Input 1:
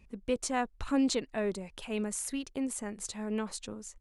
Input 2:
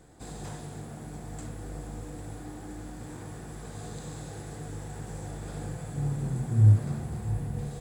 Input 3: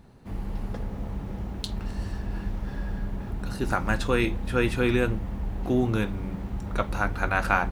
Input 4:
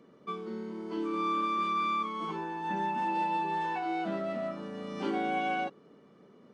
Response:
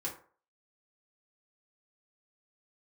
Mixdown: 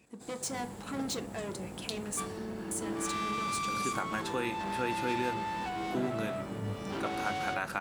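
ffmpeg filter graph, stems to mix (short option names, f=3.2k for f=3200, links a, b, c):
-filter_complex "[0:a]asoftclip=type=tanh:threshold=-34.5dB,volume=-2.5dB,asplit=3[a][b][c];[a]atrim=end=2.2,asetpts=PTS-STARTPTS,afade=t=out:st=2.196:d=0.004:c=hsin[d];[b]atrim=start=2.2:end=2.71,asetpts=PTS-STARTPTS,volume=0[e];[c]atrim=start=2.71,asetpts=PTS-STARTPTS,afade=t=in:d=0.004:c=hsin[f];[d][e][f]concat=n=3:v=0:a=1,asplit=3[g][h][i];[h]volume=-5dB[j];[1:a]volume=-8dB[k];[2:a]acompressor=threshold=-30dB:ratio=2,adelay=250,volume=-4dB[l];[3:a]aeval=exprs='(tanh(56.2*val(0)+0.65)-tanh(0.65))/56.2':c=same,adelay=1900,volume=2dB[m];[i]apad=whole_len=344236[n];[k][n]sidechaingate=range=-6dB:threshold=-60dB:ratio=16:detection=peak[o];[4:a]atrim=start_sample=2205[p];[j][p]afir=irnorm=-1:irlink=0[q];[g][o][l][m][q]amix=inputs=5:normalize=0,highpass=160,highshelf=f=5k:g=5.5"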